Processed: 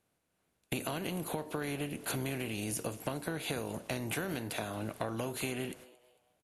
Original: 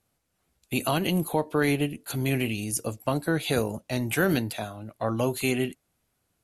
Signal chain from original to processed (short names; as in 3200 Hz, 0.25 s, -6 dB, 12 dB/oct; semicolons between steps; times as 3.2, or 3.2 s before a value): per-bin compression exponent 0.6; gate -41 dBFS, range -26 dB; compressor 12:1, threshold -31 dBFS, peak gain reduction 15 dB; frequency-shifting echo 0.224 s, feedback 37%, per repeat +120 Hz, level -21 dB; gain -1 dB; MP3 112 kbps 32000 Hz